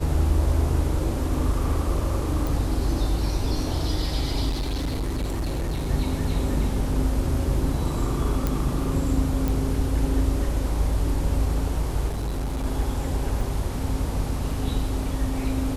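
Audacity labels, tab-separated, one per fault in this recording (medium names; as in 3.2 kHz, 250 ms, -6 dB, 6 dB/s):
2.470000	2.470000	pop
4.490000	5.900000	clipped -23 dBFS
8.470000	8.470000	pop
9.480000	9.480000	pop
12.070000	12.660000	clipped -24 dBFS
13.410000	13.410000	dropout 3.3 ms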